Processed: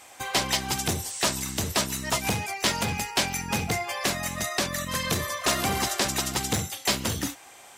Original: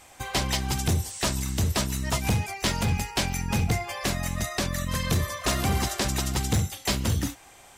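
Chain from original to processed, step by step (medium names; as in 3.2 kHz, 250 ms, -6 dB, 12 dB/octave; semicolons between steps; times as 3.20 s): high-pass 330 Hz 6 dB/octave; trim +3 dB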